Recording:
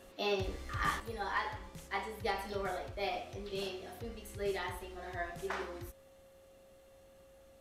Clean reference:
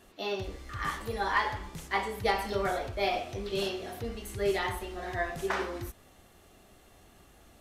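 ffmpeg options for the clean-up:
-af "bandreject=f=540:w=30,asetnsamples=n=441:p=0,asendcmd='1 volume volume 7.5dB',volume=1"

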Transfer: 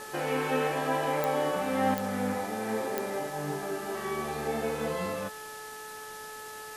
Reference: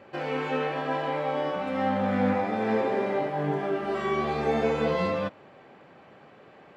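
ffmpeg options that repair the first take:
-af "adeclick=t=4,bandreject=f=431.8:t=h:w=4,bandreject=f=863.6:t=h:w=4,bandreject=f=1295.4:t=h:w=4,bandreject=f=1727.2:t=h:w=4,afwtdn=0.005,asetnsamples=n=441:p=0,asendcmd='1.94 volume volume 6.5dB',volume=1"

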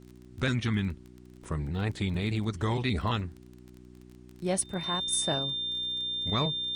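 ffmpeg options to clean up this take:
-af "adeclick=t=4,bandreject=f=61.5:t=h:w=4,bandreject=f=123:t=h:w=4,bandreject=f=184.5:t=h:w=4,bandreject=f=246:t=h:w=4,bandreject=f=307.5:t=h:w=4,bandreject=f=369:t=h:w=4,bandreject=f=3600:w=30,agate=range=0.0891:threshold=0.00631"

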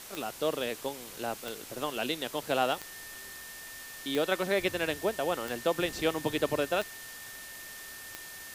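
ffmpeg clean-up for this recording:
-af "adeclick=t=4,bandreject=f=1800:w=30,afwtdn=0.0056"

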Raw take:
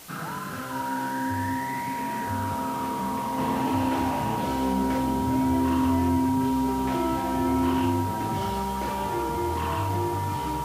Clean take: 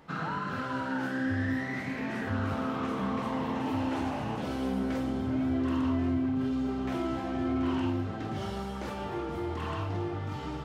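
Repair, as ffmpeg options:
-af "adeclick=t=4,bandreject=f=950:w=30,afwtdn=0.0056,asetnsamples=n=441:p=0,asendcmd='3.38 volume volume -5dB',volume=1"

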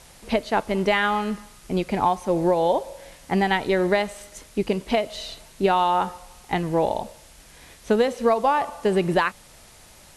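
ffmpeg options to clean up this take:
-af "afftdn=nr=19:nf=-49"

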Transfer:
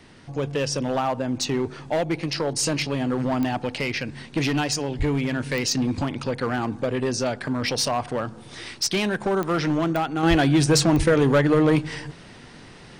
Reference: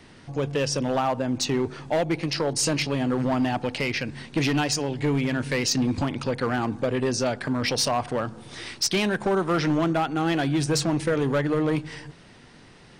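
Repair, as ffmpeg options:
-filter_complex "[0:a]adeclick=t=4,asplit=3[s0][s1][s2];[s0]afade=t=out:st=4.98:d=0.02[s3];[s1]highpass=f=140:w=0.5412,highpass=f=140:w=1.3066,afade=t=in:st=4.98:d=0.02,afade=t=out:st=5.1:d=0.02[s4];[s2]afade=t=in:st=5.1:d=0.02[s5];[s3][s4][s5]amix=inputs=3:normalize=0,asplit=3[s6][s7][s8];[s6]afade=t=out:st=10.29:d=0.02[s9];[s7]highpass=f=140:w=0.5412,highpass=f=140:w=1.3066,afade=t=in:st=10.29:d=0.02,afade=t=out:st=10.41:d=0.02[s10];[s8]afade=t=in:st=10.41:d=0.02[s11];[s9][s10][s11]amix=inputs=3:normalize=0,asplit=3[s12][s13][s14];[s12]afade=t=out:st=10.97:d=0.02[s15];[s13]highpass=f=140:w=0.5412,highpass=f=140:w=1.3066,afade=t=in:st=10.97:d=0.02,afade=t=out:st=11.09:d=0.02[s16];[s14]afade=t=in:st=11.09:d=0.02[s17];[s15][s16][s17]amix=inputs=3:normalize=0,asetnsamples=n=441:p=0,asendcmd='10.23 volume volume -5.5dB',volume=1"

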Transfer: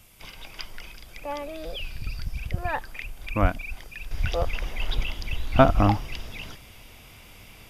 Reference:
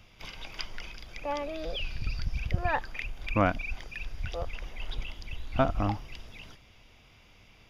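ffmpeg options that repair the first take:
-filter_complex "[0:a]asplit=3[s0][s1][s2];[s0]afade=t=out:st=3.41:d=0.02[s3];[s1]highpass=f=140:w=0.5412,highpass=f=140:w=1.3066,afade=t=in:st=3.41:d=0.02,afade=t=out:st=3.53:d=0.02[s4];[s2]afade=t=in:st=3.53:d=0.02[s5];[s3][s4][s5]amix=inputs=3:normalize=0,agate=range=0.0891:threshold=0.01,asetnsamples=n=441:p=0,asendcmd='4.11 volume volume -9dB',volume=1"

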